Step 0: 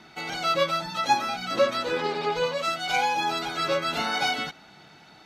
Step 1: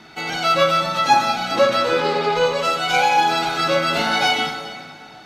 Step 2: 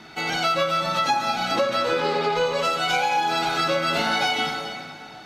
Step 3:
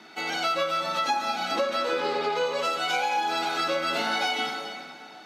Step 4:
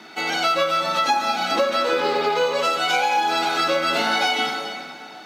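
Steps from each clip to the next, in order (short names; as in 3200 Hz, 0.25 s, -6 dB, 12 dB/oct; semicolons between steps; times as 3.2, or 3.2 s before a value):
plate-style reverb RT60 2.1 s, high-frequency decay 0.8×, DRR 3.5 dB; gain +5.5 dB
compressor, threshold -19 dBFS, peak gain reduction 9.5 dB
HPF 210 Hz 24 dB/oct; gain -4 dB
companded quantiser 8-bit; gain +6 dB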